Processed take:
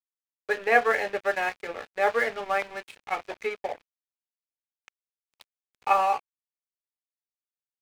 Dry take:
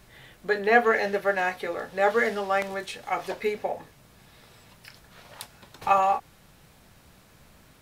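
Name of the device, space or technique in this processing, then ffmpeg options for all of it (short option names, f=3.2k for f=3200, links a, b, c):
pocket radio on a weak battery: -af "highpass=360,lowpass=3.4k,aeval=exprs='sgn(val(0))*max(abs(val(0))-0.0126,0)':c=same,equalizer=f=2.4k:t=o:w=0.29:g=5"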